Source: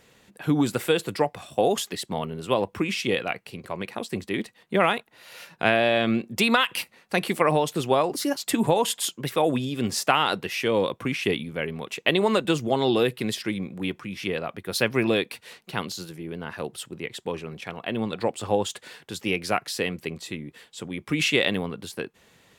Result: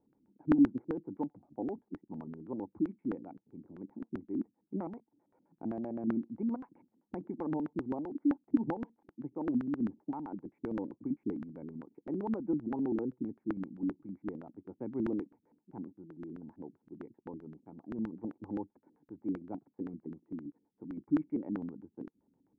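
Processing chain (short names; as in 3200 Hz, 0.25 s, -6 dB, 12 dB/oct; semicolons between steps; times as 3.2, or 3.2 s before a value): vocal tract filter u; LFO low-pass square 7.7 Hz 250–1500 Hz; gain -4.5 dB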